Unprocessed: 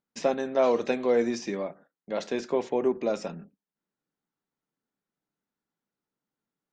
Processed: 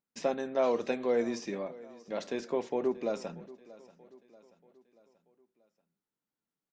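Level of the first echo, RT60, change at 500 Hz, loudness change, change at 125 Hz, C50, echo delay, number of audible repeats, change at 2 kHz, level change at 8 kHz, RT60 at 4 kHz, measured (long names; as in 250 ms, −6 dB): −20.0 dB, no reverb audible, −5.0 dB, −5.0 dB, −5.0 dB, no reverb audible, 634 ms, 3, −5.0 dB, can't be measured, no reverb audible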